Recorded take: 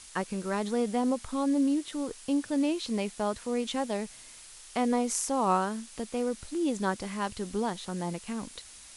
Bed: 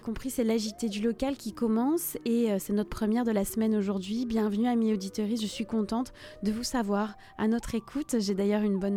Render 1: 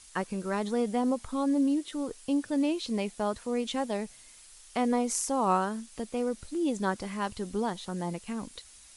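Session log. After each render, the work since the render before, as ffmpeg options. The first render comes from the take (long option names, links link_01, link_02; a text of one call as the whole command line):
ffmpeg -i in.wav -af "afftdn=noise_reduction=6:noise_floor=-50" out.wav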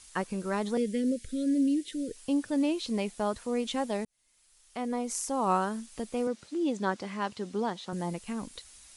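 ffmpeg -i in.wav -filter_complex "[0:a]asettb=1/sr,asplit=3[link_01][link_02][link_03];[link_01]atrim=end=0.774[link_04];[link_02]atrim=start=0.77:end=2.16,asetpts=PTS-STARTPTS,afade=type=in:duration=0.004:curve=qsin,afade=type=out:start_time=1.386:duration=0.004:curve=qsin,asuperstop=centerf=940:order=8:qfactor=0.82[link_05];[link_03]atrim=start=2.156[link_06];[link_04][link_05]acrossfade=duration=0.004:curve1=hsin:curve2=qsin[link_07];[link_07][link_06]acrossfade=duration=0.004:curve1=qsin:curve2=hsin,asettb=1/sr,asplit=3[link_08][link_09][link_10];[link_08]atrim=end=6.274[link_11];[link_09]atrim=start=6.27:end=7.93,asetpts=PTS-STARTPTS,afade=type=in:duration=0.004:curve=qsin,afade=type=out:start_time=1.656:duration=0.004:curve=qsin,highpass=170,lowpass=6200[link_12];[link_10]atrim=start=7.926[link_13];[link_11][link_12]acrossfade=duration=0.004:curve1=hsin:curve2=qsin[link_14];[link_14][link_13]acrossfade=duration=0.004:curve1=qsin:curve2=hsin,asplit=2[link_15][link_16];[link_15]atrim=end=4.05,asetpts=PTS-STARTPTS,afade=type=out:start_time=4.046:duration=0.004:curve=hsin[link_17];[link_16]atrim=start=4.05,asetpts=PTS-STARTPTS,afade=type=in:duration=1.63[link_18];[link_17][link_18]concat=n=2:v=0:a=1" out.wav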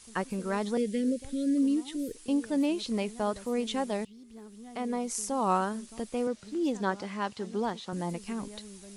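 ffmpeg -i in.wav -i bed.wav -filter_complex "[1:a]volume=-20.5dB[link_01];[0:a][link_01]amix=inputs=2:normalize=0" out.wav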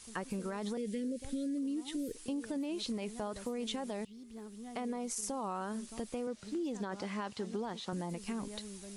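ffmpeg -i in.wav -af "alimiter=level_in=1dB:limit=-24dB:level=0:latency=1:release=30,volume=-1dB,acompressor=threshold=-34dB:ratio=6" out.wav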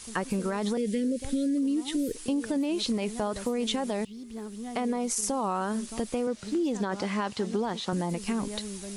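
ffmpeg -i in.wav -af "volume=9dB" out.wav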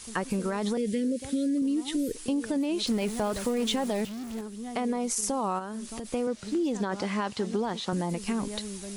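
ffmpeg -i in.wav -filter_complex "[0:a]asettb=1/sr,asplit=3[link_01][link_02][link_03];[link_01]atrim=end=0.934[link_04];[link_02]atrim=start=0.93:end=1.62,asetpts=PTS-STARTPTS,afade=type=in:duration=0.004:curve=qsin,afade=type=out:start_time=0.686:duration=0.004:curve=qsin,highpass=87[link_05];[link_03]atrim=start=1.616[link_06];[link_04][link_05]acrossfade=duration=0.004:curve1=hsin:curve2=qsin[link_07];[link_07][link_06]acrossfade=duration=0.004:curve1=qsin:curve2=hsin,asettb=1/sr,asplit=3[link_08][link_09][link_10];[link_08]atrim=end=2.874[link_11];[link_09]atrim=start=2.87:end=4.41,asetpts=PTS-STARTPTS,afade=type=in:duration=0.004:curve=qsin,afade=type=out:start_time=1.536:duration=0.004:curve=qsin,aeval=exprs='val(0)+0.5*0.015*sgn(val(0))':channel_layout=same[link_12];[link_10]atrim=start=4.406[link_13];[link_11][link_12]acrossfade=duration=0.004:curve1=hsin:curve2=qsin[link_14];[link_14][link_13]acrossfade=duration=0.004:curve1=qsin:curve2=hsin,asplit=3[link_15][link_16][link_17];[link_15]afade=type=out:start_time=5.58:duration=0.02[link_18];[link_16]acompressor=threshold=-33dB:ratio=4:attack=3.2:release=140:knee=1:detection=peak,afade=type=in:start_time=5.58:duration=0.02,afade=type=out:start_time=6.04:duration=0.02[link_19];[link_17]afade=type=in:start_time=6.04:duration=0.02[link_20];[link_18][link_19][link_20]amix=inputs=3:normalize=0" out.wav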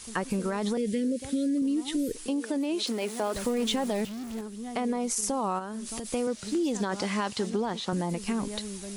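ffmpeg -i in.wav -filter_complex "[0:a]asettb=1/sr,asplit=3[link_01][link_02][link_03];[link_01]atrim=end=2.284[link_04];[link_02]atrim=start=2.28:end=3.35,asetpts=PTS-STARTPTS,afade=type=in:duration=0.004:curve=qsin,afade=type=out:start_time=1.066:duration=0.004:curve=qsin,highpass=frequency=250:width=0.5412,highpass=frequency=250:width=1.3066[link_05];[link_03]atrim=start=3.346[link_06];[link_04][link_05]acrossfade=duration=0.004:curve1=hsin:curve2=qsin[link_07];[link_07][link_06]acrossfade=duration=0.004:curve1=qsin:curve2=hsin,asettb=1/sr,asplit=3[link_08][link_09][link_10];[link_08]atrim=end=5.864[link_11];[link_09]atrim=start=5.86:end=7.5,asetpts=PTS-STARTPTS,afade=type=in:duration=0.004:curve=qsin,afade=type=out:start_time=1.636:duration=0.004:curve=qsin,highshelf=frequency=3600:gain=7.5[link_12];[link_10]atrim=start=7.496[link_13];[link_11][link_12]acrossfade=duration=0.004:curve1=hsin:curve2=qsin[link_14];[link_14][link_13]acrossfade=duration=0.004:curve1=qsin:curve2=hsin" out.wav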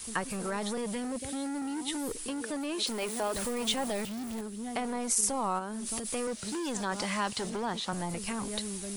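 ffmpeg -i in.wav -filter_complex "[0:a]acrossover=split=610|1700[link_01][link_02][link_03];[link_01]volume=35dB,asoftclip=hard,volume=-35dB[link_04];[link_04][link_02][link_03]amix=inputs=3:normalize=0,aexciter=amount=1.7:drive=3.1:freq=8400" out.wav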